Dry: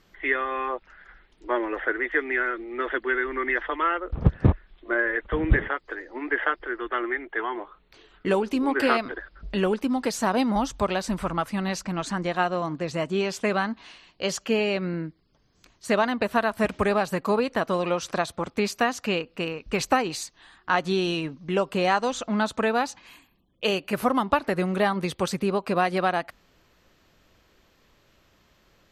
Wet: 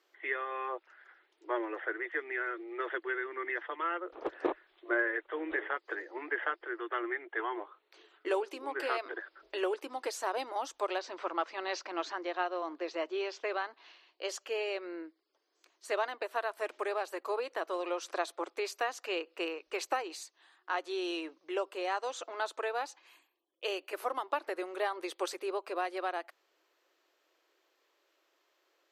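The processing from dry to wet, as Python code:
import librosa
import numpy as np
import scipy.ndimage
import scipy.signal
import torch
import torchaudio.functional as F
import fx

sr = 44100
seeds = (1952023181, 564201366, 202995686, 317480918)

y = fx.cheby2_lowpass(x, sr, hz=9900.0, order=4, stop_db=40, at=(10.98, 14.23), fade=0.02)
y = scipy.signal.sosfilt(scipy.signal.ellip(4, 1.0, 40, 330.0, 'highpass', fs=sr, output='sos'), y)
y = fx.rider(y, sr, range_db=10, speed_s=0.5)
y = y * 10.0 ** (-8.5 / 20.0)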